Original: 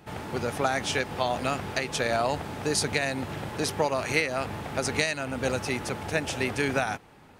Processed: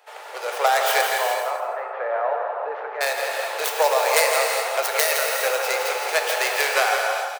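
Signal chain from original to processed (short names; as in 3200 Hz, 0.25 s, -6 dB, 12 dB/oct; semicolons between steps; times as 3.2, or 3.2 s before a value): tracing distortion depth 0.5 ms; steep high-pass 480 Hz 48 dB/oct; AGC gain up to 7 dB; 1.01–3.01 ladder low-pass 1700 Hz, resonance 20%; feedback echo 0.166 s, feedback 26%, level -8 dB; non-linear reverb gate 0.44 s flat, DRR 1.5 dB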